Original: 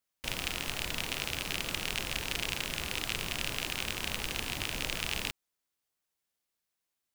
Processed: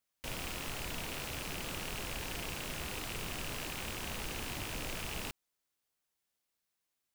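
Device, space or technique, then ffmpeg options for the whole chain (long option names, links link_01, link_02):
saturation between pre-emphasis and de-emphasis: -af "highshelf=frequency=3400:gain=11.5,asoftclip=type=tanh:threshold=-27.5dB,highshelf=frequency=3400:gain=-11.5"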